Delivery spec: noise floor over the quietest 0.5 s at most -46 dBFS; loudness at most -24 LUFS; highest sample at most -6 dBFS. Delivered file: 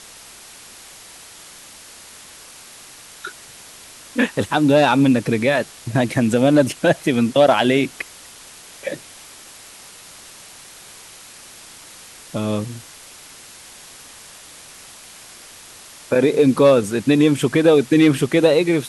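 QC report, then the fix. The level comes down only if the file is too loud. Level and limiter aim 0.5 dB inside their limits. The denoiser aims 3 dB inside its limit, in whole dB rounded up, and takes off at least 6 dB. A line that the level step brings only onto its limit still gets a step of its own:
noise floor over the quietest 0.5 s -42 dBFS: fail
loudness -17.0 LUFS: fail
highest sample -3.0 dBFS: fail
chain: trim -7.5 dB

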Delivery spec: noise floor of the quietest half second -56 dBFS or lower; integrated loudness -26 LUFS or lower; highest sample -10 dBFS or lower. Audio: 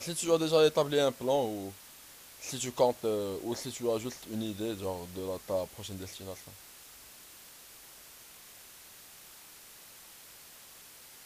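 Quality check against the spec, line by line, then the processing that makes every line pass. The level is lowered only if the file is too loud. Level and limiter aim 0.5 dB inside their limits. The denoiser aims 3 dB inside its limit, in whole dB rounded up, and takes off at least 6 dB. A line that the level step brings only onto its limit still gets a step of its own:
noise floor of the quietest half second -53 dBFS: fail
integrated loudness -32.0 LUFS: pass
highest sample -12.5 dBFS: pass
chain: noise reduction 6 dB, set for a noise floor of -53 dBFS

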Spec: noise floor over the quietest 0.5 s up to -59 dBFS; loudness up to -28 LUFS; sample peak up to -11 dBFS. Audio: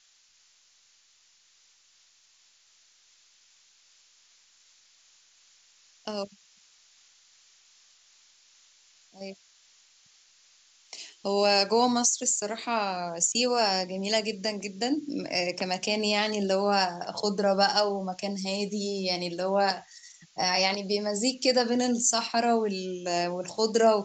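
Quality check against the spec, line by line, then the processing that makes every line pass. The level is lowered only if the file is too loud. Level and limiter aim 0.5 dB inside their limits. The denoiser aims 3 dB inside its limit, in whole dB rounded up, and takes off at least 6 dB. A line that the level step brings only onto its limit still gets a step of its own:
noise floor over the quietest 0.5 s -63 dBFS: pass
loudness -26.5 LUFS: fail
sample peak -9.5 dBFS: fail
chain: trim -2 dB

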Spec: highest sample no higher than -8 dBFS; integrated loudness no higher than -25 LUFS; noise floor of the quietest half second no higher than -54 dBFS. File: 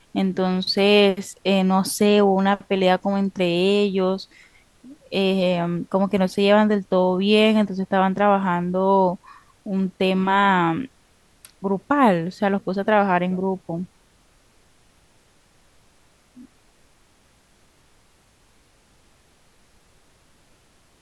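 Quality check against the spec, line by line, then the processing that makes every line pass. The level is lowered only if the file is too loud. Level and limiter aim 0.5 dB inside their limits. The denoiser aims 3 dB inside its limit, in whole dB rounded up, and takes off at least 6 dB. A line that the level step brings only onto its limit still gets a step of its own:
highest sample -4.5 dBFS: fail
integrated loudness -20.0 LUFS: fail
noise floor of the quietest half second -58 dBFS: pass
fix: trim -5.5 dB

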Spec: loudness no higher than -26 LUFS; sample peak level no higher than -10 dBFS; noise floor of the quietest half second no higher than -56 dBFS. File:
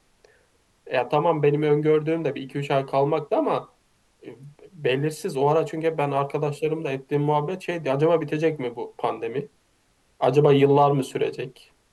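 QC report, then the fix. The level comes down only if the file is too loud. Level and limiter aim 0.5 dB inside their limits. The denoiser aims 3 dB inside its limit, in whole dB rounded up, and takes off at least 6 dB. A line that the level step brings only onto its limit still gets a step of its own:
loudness -23.5 LUFS: fail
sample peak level -6.0 dBFS: fail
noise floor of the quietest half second -64 dBFS: pass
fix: trim -3 dB; peak limiter -10.5 dBFS

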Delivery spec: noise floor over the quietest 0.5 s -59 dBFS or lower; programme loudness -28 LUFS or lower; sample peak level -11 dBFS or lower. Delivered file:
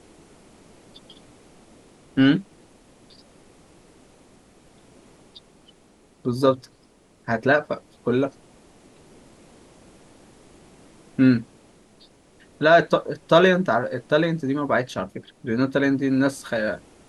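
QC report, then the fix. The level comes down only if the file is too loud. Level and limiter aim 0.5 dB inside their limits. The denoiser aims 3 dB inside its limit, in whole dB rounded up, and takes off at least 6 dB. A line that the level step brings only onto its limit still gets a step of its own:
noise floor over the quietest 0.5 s -57 dBFS: fail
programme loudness -22.0 LUFS: fail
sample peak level -2.5 dBFS: fail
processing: trim -6.5 dB; peak limiter -11.5 dBFS

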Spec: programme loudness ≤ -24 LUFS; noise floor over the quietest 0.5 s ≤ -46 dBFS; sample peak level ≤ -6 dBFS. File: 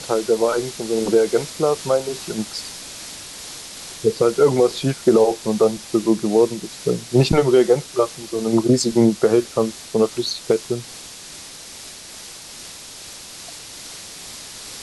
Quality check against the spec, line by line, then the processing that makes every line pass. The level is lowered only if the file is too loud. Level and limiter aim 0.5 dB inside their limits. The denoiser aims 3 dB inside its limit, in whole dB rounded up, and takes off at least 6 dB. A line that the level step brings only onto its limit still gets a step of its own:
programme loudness -19.5 LUFS: fail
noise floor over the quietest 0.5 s -38 dBFS: fail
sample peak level -4.5 dBFS: fail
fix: noise reduction 6 dB, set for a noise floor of -38 dBFS; trim -5 dB

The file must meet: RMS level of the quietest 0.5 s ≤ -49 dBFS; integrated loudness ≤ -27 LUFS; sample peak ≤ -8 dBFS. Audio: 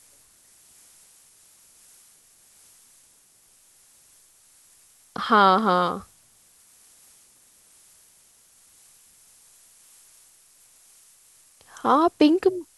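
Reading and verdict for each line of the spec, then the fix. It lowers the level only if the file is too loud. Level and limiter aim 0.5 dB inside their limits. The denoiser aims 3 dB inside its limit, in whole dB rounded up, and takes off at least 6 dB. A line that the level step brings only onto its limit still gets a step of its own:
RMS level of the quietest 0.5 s -58 dBFS: pass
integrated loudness -20.5 LUFS: fail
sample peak -5.5 dBFS: fail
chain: trim -7 dB

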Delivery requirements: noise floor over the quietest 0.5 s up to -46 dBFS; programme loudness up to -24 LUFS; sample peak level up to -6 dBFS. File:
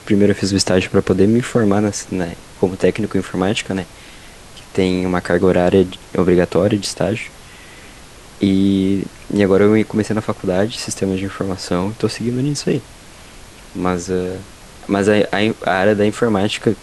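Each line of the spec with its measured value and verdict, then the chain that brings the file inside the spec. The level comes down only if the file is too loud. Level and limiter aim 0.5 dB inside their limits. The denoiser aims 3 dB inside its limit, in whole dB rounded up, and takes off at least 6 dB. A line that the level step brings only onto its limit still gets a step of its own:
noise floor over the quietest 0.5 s -39 dBFS: fail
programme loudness -17.5 LUFS: fail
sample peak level -1.5 dBFS: fail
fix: noise reduction 6 dB, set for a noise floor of -39 dBFS; trim -7 dB

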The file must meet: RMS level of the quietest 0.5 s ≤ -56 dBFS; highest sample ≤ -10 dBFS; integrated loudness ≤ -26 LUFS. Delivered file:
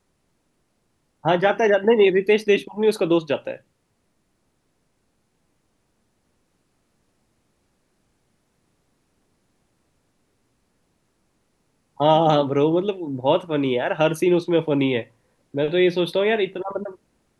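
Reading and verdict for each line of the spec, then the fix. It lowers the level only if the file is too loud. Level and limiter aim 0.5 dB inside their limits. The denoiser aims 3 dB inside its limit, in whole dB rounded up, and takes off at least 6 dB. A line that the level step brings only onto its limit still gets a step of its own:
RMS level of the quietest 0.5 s -69 dBFS: pass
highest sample -6.0 dBFS: fail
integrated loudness -20.5 LUFS: fail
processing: trim -6 dB

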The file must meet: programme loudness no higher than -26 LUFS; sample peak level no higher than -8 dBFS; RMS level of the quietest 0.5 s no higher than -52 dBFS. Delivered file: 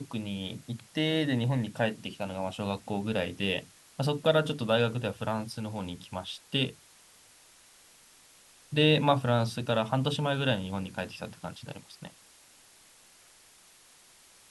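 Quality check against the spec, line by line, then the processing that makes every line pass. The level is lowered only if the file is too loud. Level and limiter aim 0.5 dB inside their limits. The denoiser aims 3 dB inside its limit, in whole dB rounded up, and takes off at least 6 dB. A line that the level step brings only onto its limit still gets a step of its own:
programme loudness -30.0 LUFS: pass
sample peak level -11.5 dBFS: pass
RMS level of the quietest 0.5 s -58 dBFS: pass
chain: none needed

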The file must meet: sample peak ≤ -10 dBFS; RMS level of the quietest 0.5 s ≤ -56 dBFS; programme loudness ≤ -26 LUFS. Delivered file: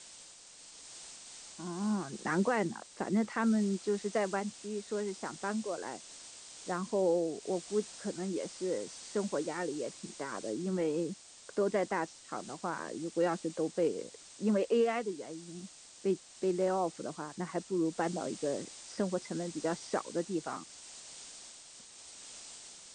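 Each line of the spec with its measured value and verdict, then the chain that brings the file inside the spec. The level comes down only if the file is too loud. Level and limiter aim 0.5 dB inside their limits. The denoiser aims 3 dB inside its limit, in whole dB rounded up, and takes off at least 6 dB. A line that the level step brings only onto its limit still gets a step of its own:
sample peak -18.5 dBFS: pass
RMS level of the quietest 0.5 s -54 dBFS: fail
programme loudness -35.0 LUFS: pass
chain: noise reduction 6 dB, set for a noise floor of -54 dBFS

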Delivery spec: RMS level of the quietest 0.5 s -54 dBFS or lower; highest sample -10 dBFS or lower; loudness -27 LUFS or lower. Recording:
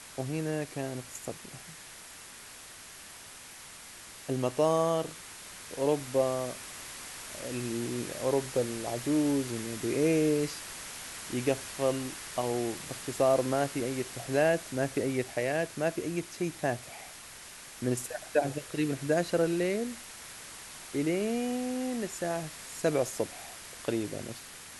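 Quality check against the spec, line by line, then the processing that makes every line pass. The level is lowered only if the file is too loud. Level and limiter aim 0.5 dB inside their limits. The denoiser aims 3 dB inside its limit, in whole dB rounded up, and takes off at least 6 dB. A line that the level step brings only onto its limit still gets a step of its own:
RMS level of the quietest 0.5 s -48 dBFS: fail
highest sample -13.5 dBFS: pass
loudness -31.5 LUFS: pass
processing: noise reduction 9 dB, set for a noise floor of -48 dBFS

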